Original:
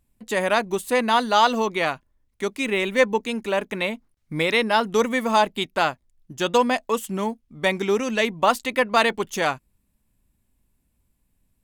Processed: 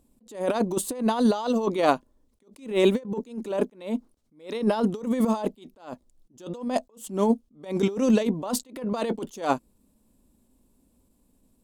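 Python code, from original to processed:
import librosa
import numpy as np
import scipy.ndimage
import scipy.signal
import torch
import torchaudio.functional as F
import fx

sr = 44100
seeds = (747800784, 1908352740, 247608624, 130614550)

y = fx.graphic_eq(x, sr, hz=(125, 250, 500, 1000, 2000, 4000, 8000), db=(-4, 11, 9, 4, -7, 3, 5))
y = fx.over_compress(y, sr, threshold_db=-17.0, ratio=-0.5)
y = fx.attack_slew(y, sr, db_per_s=150.0)
y = F.gain(torch.from_numpy(y), -3.5).numpy()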